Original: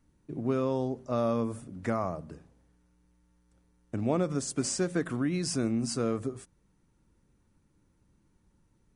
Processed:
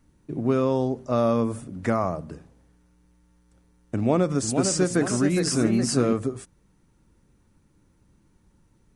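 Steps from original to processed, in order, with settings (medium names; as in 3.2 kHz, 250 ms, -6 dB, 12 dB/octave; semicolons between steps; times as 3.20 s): 3.96–6.13 s: ever faster or slower copies 470 ms, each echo +1 st, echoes 2, each echo -6 dB; trim +6.5 dB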